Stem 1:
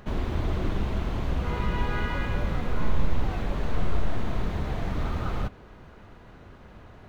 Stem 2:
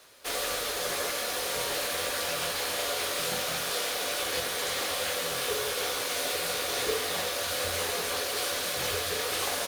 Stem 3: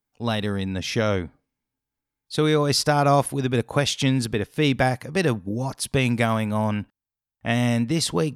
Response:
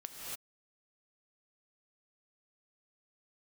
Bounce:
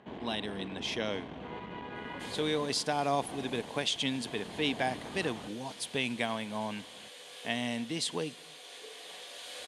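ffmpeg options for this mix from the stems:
-filter_complex "[0:a]lowpass=frequency=1400:poles=1,alimiter=limit=-17.5dB:level=0:latency=1:release=333,asoftclip=type=tanh:threshold=-22.5dB,volume=-2dB[link_01];[1:a]adelay=1950,volume=-6dB,asplit=2[link_02][link_03];[link_03]volume=-16.5dB[link_04];[2:a]volume=-8.5dB,asplit=3[link_05][link_06][link_07];[link_06]volume=-19dB[link_08];[link_07]apad=whole_len=512514[link_09];[link_02][link_09]sidechaincompress=threshold=-50dB:ratio=5:attack=42:release=1460[link_10];[3:a]atrim=start_sample=2205[link_11];[link_04][link_08]amix=inputs=2:normalize=0[link_12];[link_12][link_11]afir=irnorm=-1:irlink=0[link_13];[link_01][link_10][link_05][link_13]amix=inputs=4:normalize=0,highpass=270,equalizer=frequency=360:width_type=q:width=4:gain=-3,equalizer=frequency=550:width_type=q:width=4:gain=-5,equalizer=frequency=1300:width_type=q:width=4:gain=-10,equalizer=frequency=3200:width_type=q:width=4:gain=6,equalizer=frequency=5500:width_type=q:width=4:gain=-5,lowpass=frequency=9800:width=0.5412,lowpass=frequency=9800:width=1.3066"

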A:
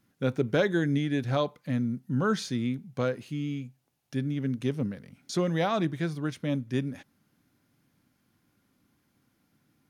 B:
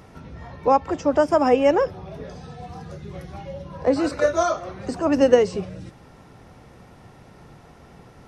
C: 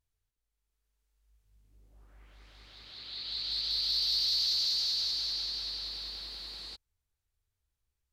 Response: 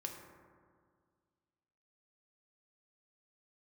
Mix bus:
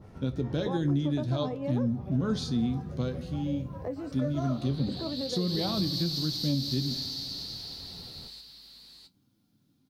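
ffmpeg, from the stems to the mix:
-filter_complex "[0:a]equalizer=frequency=125:width_type=o:width=1:gain=9,equalizer=frequency=250:width_type=o:width=1:gain=8,equalizer=frequency=2000:width_type=o:width=1:gain=-8,equalizer=frequency=4000:width_type=o:width=1:gain=11,volume=-5.5dB,asplit=2[link_01][link_02];[link_02]volume=-7.5dB[link_03];[1:a]lowshelf=frequency=390:gain=10,acompressor=threshold=-25dB:ratio=4,adynamicequalizer=threshold=0.00708:dfrequency=1700:dqfactor=0.7:tfrequency=1700:tqfactor=0.7:attack=5:release=100:ratio=0.375:range=2.5:mode=cutabove:tftype=highshelf,volume=-5.5dB[link_04];[2:a]aemphasis=mode=production:type=50fm,adelay=1650,volume=-5.5dB,asplit=2[link_05][link_06];[link_06]volume=-3dB[link_07];[3:a]atrim=start_sample=2205[link_08];[link_03][link_08]afir=irnorm=-1:irlink=0[link_09];[link_07]aecho=0:1:664:1[link_10];[link_01][link_04][link_05][link_09][link_10]amix=inputs=5:normalize=0,flanger=delay=9.2:depth=5.2:regen=57:speed=0.53:shape=triangular,alimiter=limit=-19dB:level=0:latency=1:release=125"

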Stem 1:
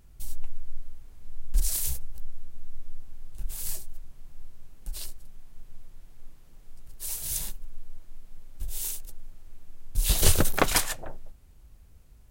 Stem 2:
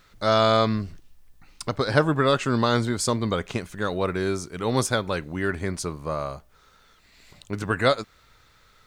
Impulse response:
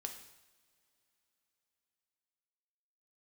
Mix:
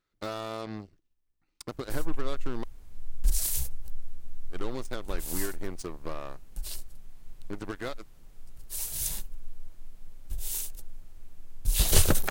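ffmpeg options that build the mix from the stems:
-filter_complex "[0:a]adelay=1700,volume=-0.5dB[link_01];[1:a]equalizer=frequency=330:width=2.5:gain=9,acompressor=threshold=-25dB:ratio=8,aeval=exprs='0.126*(cos(1*acos(clip(val(0)/0.126,-1,1)))-cos(1*PI/2))+0.0158*(cos(7*acos(clip(val(0)/0.126,-1,1)))-cos(7*PI/2))':channel_layout=same,volume=-7.5dB,asplit=3[link_02][link_03][link_04];[link_02]atrim=end=2.64,asetpts=PTS-STARTPTS,afade=type=out:start_time=2.636:duration=0.004:curve=hsin[link_05];[link_03]atrim=start=2.64:end=4.5,asetpts=PTS-STARTPTS,volume=0[link_06];[link_04]atrim=start=4.5,asetpts=PTS-STARTPTS,afade=type=in:duration=0.004:curve=hsin[link_07];[link_05][link_06][link_07]concat=n=3:v=0:a=1[link_08];[link_01][link_08]amix=inputs=2:normalize=0"

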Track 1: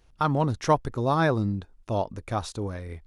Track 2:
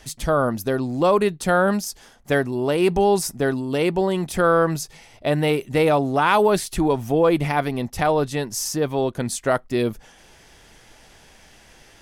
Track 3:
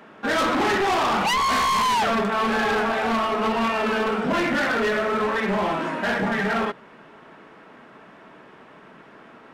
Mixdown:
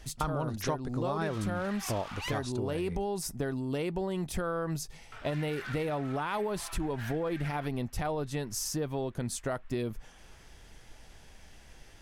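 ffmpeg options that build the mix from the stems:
ffmpeg -i stem1.wav -i stem2.wav -i stem3.wav -filter_complex "[0:a]volume=-0.5dB[link_01];[1:a]lowshelf=frequency=110:gain=11.5,volume=-7.5dB[link_02];[2:a]highpass=1400,adelay=950,volume=-13.5dB,asplit=3[link_03][link_04][link_05];[link_03]atrim=end=2.38,asetpts=PTS-STARTPTS,afade=type=out:start_time=2.376:duration=0.004:curve=hsin[link_06];[link_04]atrim=start=2.38:end=5.12,asetpts=PTS-STARTPTS,volume=0[link_07];[link_05]atrim=start=5.12,asetpts=PTS-STARTPTS,afade=type=in:duration=0.004:curve=hsin[link_08];[link_06][link_07][link_08]concat=n=3:v=0:a=1[link_09];[link_02][link_09]amix=inputs=2:normalize=0,alimiter=limit=-17.5dB:level=0:latency=1,volume=0dB[link_10];[link_01][link_10]amix=inputs=2:normalize=0,acompressor=threshold=-29dB:ratio=6" out.wav

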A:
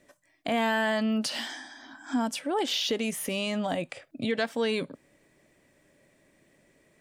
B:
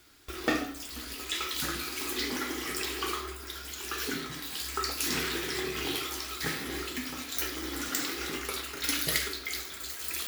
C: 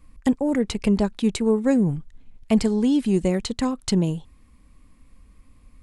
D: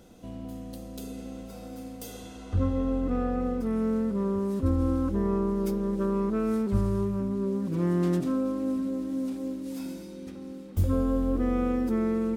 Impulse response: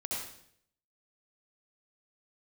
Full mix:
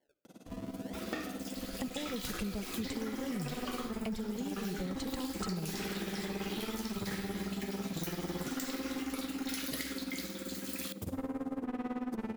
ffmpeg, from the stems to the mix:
-filter_complex "[0:a]alimiter=limit=-22dB:level=0:latency=1,bandpass=frequency=480:width_type=q:width=1.4:csg=0,acrusher=samples=34:mix=1:aa=0.000001:lfo=1:lforange=54.4:lforate=0.55,volume=-13dB,asplit=2[link_01][link_02];[link_02]volume=-18.5dB[link_03];[1:a]adelay=650,volume=-6dB,asplit=2[link_04][link_05];[link_05]volume=-21.5dB[link_06];[2:a]acrossover=split=310[link_07][link_08];[link_08]acompressor=threshold=-31dB:ratio=6[link_09];[link_07][link_09]amix=inputs=2:normalize=0,equalizer=frequency=280:width_type=o:width=0.91:gain=-7,adelay=1550,volume=-5.5dB[link_10];[3:a]highpass=frequency=130:width=0.5412,highpass=frequency=130:width=1.3066,asoftclip=type=tanh:threshold=-31.5dB,tremolo=f=18:d=0.98,adelay=250,volume=1dB,asplit=2[link_11][link_12];[link_12]volume=-13dB[link_13];[4:a]atrim=start_sample=2205[link_14];[link_03][link_06][link_13]amix=inputs=3:normalize=0[link_15];[link_15][link_14]afir=irnorm=-1:irlink=0[link_16];[link_01][link_04][link_10][link_11][link_16]amix=inputs=5:normalize=0,acompressor=threshold=-34dB:ratio=6"

